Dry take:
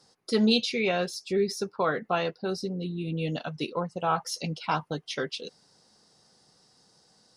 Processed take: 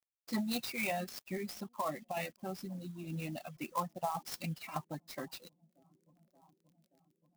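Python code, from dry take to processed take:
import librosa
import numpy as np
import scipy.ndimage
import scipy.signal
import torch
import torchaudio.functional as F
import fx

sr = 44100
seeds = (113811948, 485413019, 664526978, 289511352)

p1 = fx.spec_quant(x, sr, step_db=15)
p2 = scipy.signal.sosfilt(scipy.signal.butter(12, 6900.0, 'lowpass', fs=sr, output='sos'), p1)
p3 = fx.bass_treble(p2, sr, bass_db=-9, treble_db=-10)
p4 = fx.fixed_phaser(p3, sr, hz=2200.0, stages=8)
p5 = fx.quant_dither(p4, sr, seeds[0], bits=10, dither='none')
p6 = p5 + fx.echo_wet_lowpass(p5, sr, ms=578, feedback_pct=74, hz=470.0, wet_db=-23.5, dry=0)
p7 = fx.dynamic_eq(p6, sr, hz=150.0, q=1.5, threshold_db=-42.0, ratio=4.0, max_db=6)
p8 = fx.over_compress(p7, sr, threshold_db=-31.0, ratio=-1.0)
p9 = fx.dereverb_blind(p8, sr, rt60_s=0.92)
p10 = fx.filter_lfo_notch(p9, sr, shape='saw_down', hz=0.84, low_hz=810.0, high_hz=4500.0, q=0.92)
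y = fx.clock_jitter(p10, sr, seeds[1], jitter_ms=0.029)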